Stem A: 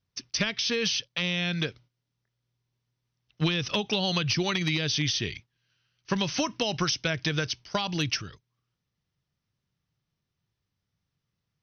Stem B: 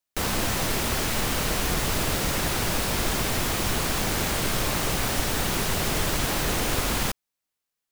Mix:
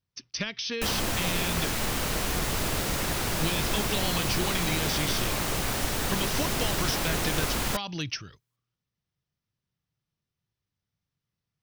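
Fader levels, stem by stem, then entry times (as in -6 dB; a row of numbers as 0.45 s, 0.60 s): -4.5 dB, -3.0 dB; 0.00 s, 0.65 s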